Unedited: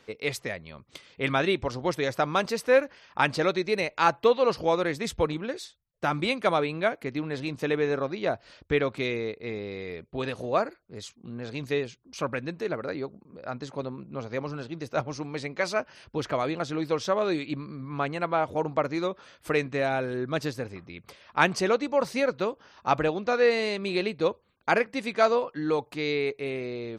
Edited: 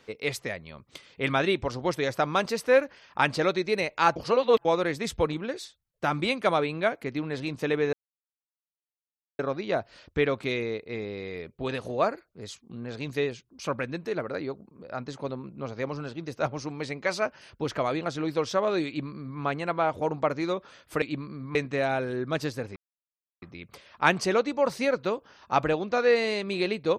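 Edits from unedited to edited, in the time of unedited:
4.16–4.65 reverse
7.93 insert silence 1.46 s
17.41–17.94 copy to 19.56
20.77 insert silence 0.66 s

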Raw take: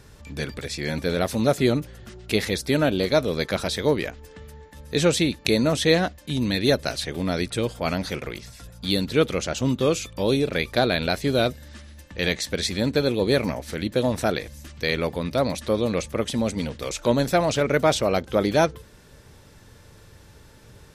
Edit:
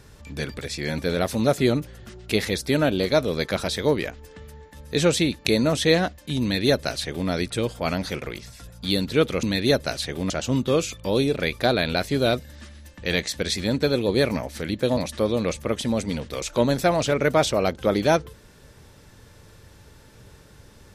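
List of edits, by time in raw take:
6.42–7.29 copy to 9.43
14.1–15.46 cut

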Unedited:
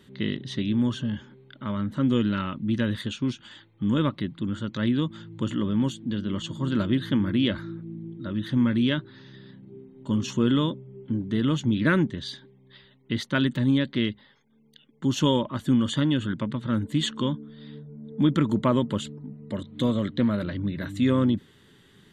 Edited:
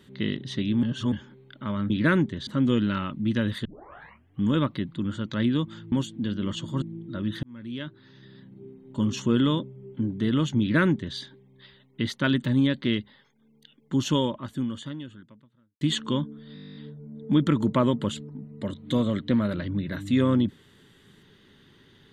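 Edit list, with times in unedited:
0.83–1.12 reverse
3.08 tape start 0.77 s
5.35–5.79 cut
6.69–7.93 cut
8.54–9.75 fade in
11.71–12.28 copy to 1.9
15.08–16.92 fade out quadratic
17.65 stutter 0.02 s, 12 plays

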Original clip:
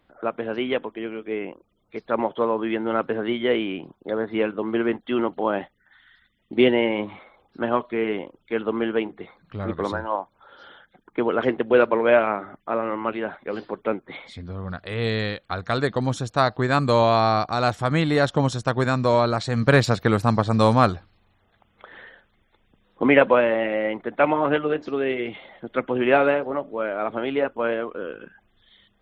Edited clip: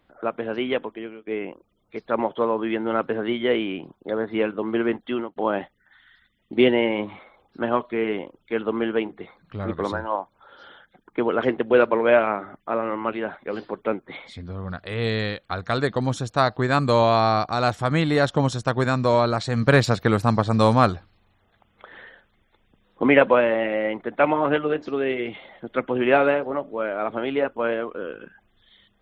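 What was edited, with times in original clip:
0.89–1.27 fade out, to -16.5 dB
5.07–5.36 fade out

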